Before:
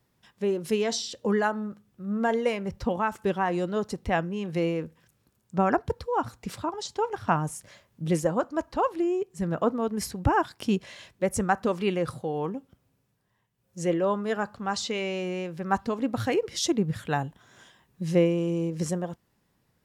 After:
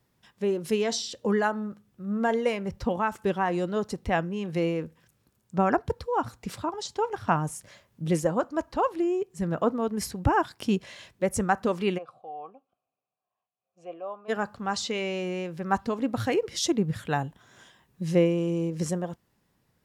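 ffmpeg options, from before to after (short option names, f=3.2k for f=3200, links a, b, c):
-filter_complex "[0:a]asplit=3[a][b][c];[a]afade=t=out:st=11.97:d=0.02[d];[b]asplit=3[e][f][g];[e]bandpass=f=730:t=q:w=8,volume=0dB[h];[f]bandpass=f=1.09k:t=q:w=8,volume=-6dB[i];[g]bandpass=f=2.44k:t=q:w=8,volume=-9dB[j];[h][i][j]amix=inputs=3:normalize=0,afade=t=in:st=11.97:d=0.02,afade=t=out:st=14.28:d=0.02[k];[c]afade=t=in:st=14.28:d=0.02[l];[d][k][l]amix=inputs=3:normalize=0"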